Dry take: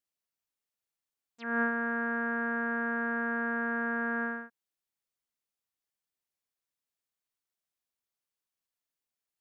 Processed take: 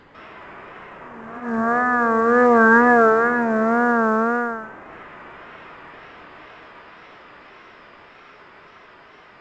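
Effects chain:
linear delta modulator 32 kbit/s, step −38.5 dBFS
source passing by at 0:02.70, 6 m/s, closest 4 metres
treble cut that deepens with the level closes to 1,300 Hz, closed at −52 dBFS
low-pass filter 3,000 Hz 12 dB per octave
hum removal 342.8 Hz, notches 30
convolution reverb RT60 0.60 s, pre-delay 140 ms, DRR −11 dB
tape wow and flutter 82 cents
backwards echo 346 ms −18 dB
level +3 dB
mu-law 128 kbit/s 16,000 Hz

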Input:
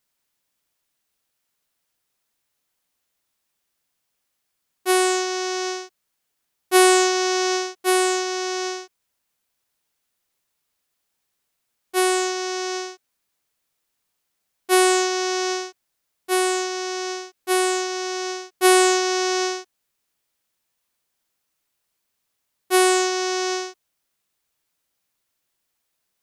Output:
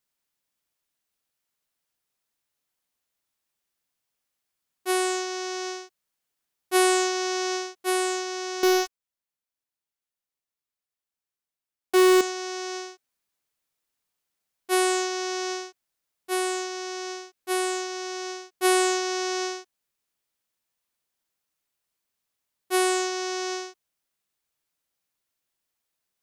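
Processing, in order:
0:08.63–0:12.21: leveller curve on the samples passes 5
level −6 dB

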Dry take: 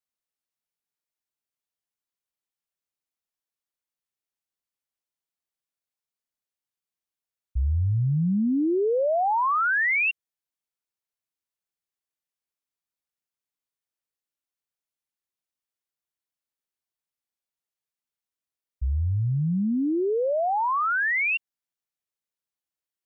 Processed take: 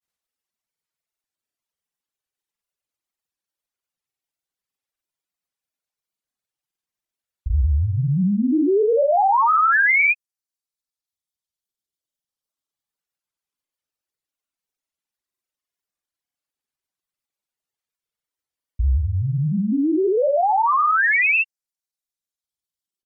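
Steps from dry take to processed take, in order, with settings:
pitch vibrato 0.5 Hz 6.1 cents
reverb reduction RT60 1.9 s
granular cloud, grains 20 per second, pitch spread up and down by 0 semitones
level +8 dB

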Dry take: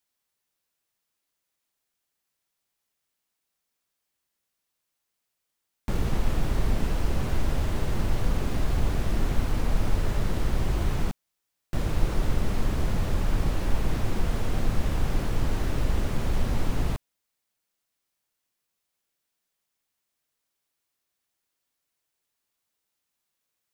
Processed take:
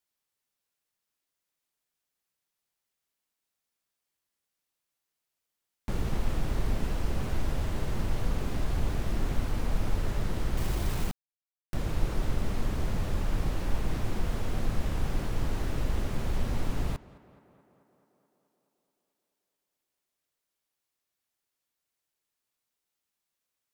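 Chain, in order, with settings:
pitch vibrato 5.4 Hz 24 cents
tape delay 216 ms, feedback 75%, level −18 dB, low-pass 2,900 Hz
0:10.57–0:11.74: bit-depth reduction 6 bits, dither none
level −4 dB

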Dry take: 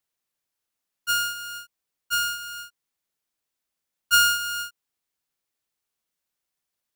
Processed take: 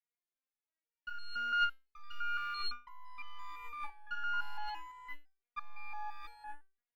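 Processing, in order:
parametric band 2,200 Hz +9 dB 0.46 octaves
leveller curve on the samples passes 5
compressor whose output falls as the input rises −23 dBFS, ratio −1
high-frequency loss of the air 300 metres
delay with pitch and tempo change per echo 678 ms, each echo −3 semitones, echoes 3
step-sequenced resonator 5.9 Hz 240–470 Hz
level +2 dB

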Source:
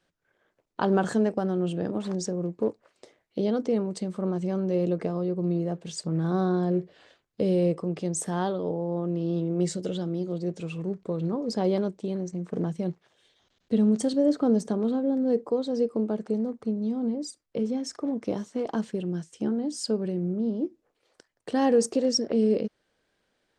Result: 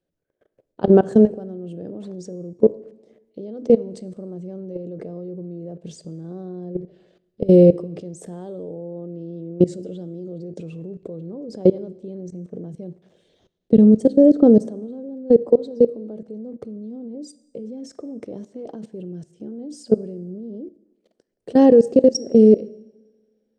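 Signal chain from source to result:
output level in coarse steps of 23 dB
low shelf with overshoot 740 Hz +10 dB, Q 1.5
coupled-rooms reverb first 0.98 s, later 2.8 s, from −25 dB, DRR 17.5 dB
level +2 dB

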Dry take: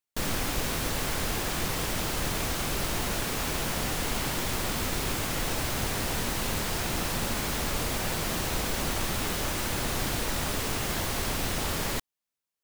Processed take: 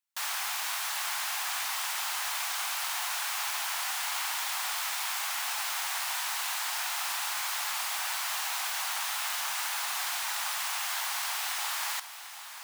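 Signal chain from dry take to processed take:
Butterworth high-pass 770 Hz 48 dB per octave
feedback echo at a low word length 745 ms, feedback 55%, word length 9 bits, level −12 dB

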